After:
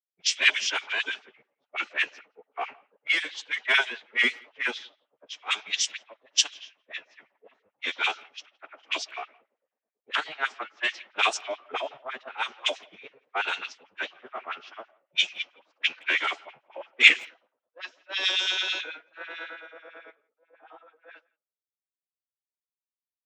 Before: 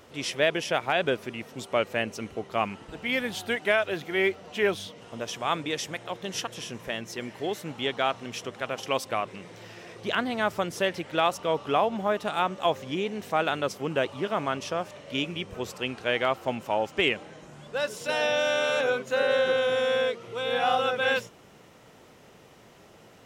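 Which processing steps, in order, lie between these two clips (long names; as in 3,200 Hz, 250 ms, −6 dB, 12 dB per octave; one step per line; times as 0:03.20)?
fade-out on the ending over 6.53 s
meter weighting curve ITU-R 468
low-pass that shuts in the quiet parts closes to 310 Hz, open at −19 dBFS
hum removal 336.1 Hz, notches 4
dynamic equaliser 810 Hz, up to −4 dB, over −44 dBFS, Q 2.7
auto-filter high-pass sine 9.1 Hz 410–3,300 Hz
phase-vocoder pitch shift with formants kept −8 semitones
far-end echo of a speakerphone 170 ms, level −21 dB
multiband upward and downward expander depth 100%
level −6 dB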